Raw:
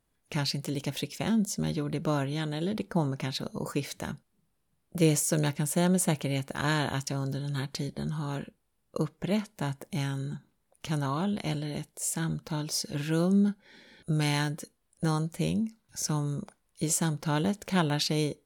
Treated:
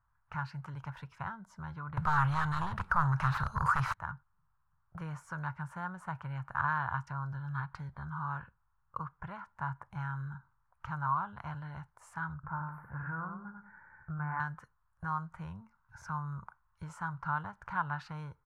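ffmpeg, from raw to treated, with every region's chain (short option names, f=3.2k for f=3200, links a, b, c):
-filter_complex "[0:a]asettb=1/sr,asplit=3[a][b][c];[a]atrim=end=1.974[d];[b]atrim=start=1.97:end=3.94,asetpts=PTS-STARTPTS,afade=t=in:d=0.004:c=qsin,afade=t=out:st=1.966:d=0.004:c=qsin,highshelf=f=2.2k:g=9.5,acrossover=split=130|3000[e][f][g];[f]acompressor=threshold=-47dB:ratio=1.5:attack=3.2:release=140:knee=2.83:detection=peak[h];[e][h][g]amix=inputs=3:normalize=0,aeval=exprs='0.2*sin(PI/2*7.08*val(0)/0.2)':c=same[i];[c]atrim=start=3.936[j];[d][i]acrossfade=d=0.004:c1=hsin:c2=qsin[k];[k][j]acrossfade=d=0.004:c1=qsin:c2=hsin,asettb=1/sr,asplit=3[l][m][n];[l]atrim=end=12.344[o];[m]atrim=start=12.34:end=14.4,asetpts=PTS-STARTPTS,afade=t=in:d=0.004:c=qsin,afade=t=out:st=2.056:d=0.004:c=qsin,asuperstop=centerf=5300:order=8:qfactor=0.52,aecho=1:1:93|186|279:0.562|0.146|0.038,atrim=end_sample=90846[p];[n]atrim=start=14.396[q];[o][p]acrossfade=d=0.004:c1=hsin:c2=qsin[r];[r][q]acrossfade=d=0.004:c1=qsin:c2=hsin,aemphasis=mode=reproduction:type=50fm,acompressor=threshold=-32dB:ratio=2,firequalizer=gain_entry='entry(120,0);entry(230,-26);entry(510,-21);entry(950,7);entry(1400,8);entry(2100,-11);entry(3500,-21)':delay=0.05:min_phase=1,volume=1dB"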